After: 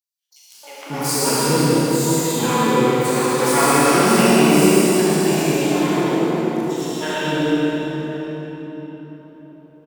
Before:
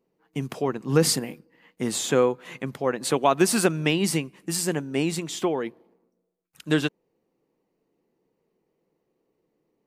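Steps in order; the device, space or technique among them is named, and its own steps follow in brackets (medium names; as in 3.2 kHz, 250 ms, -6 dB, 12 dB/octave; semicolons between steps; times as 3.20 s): shimmer-style reverb (harmony voices +12 st -6 dB; reverberation RT60 4.4 s, pre-delay 68 ms, DRR -3 dB); three bands offset in time highs, mids, lows 310/540 ms, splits 610/4000 Hz; Schroeder reverb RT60 1.9 s, combs from 27 ms, DRR -5 dB; trim -2 dB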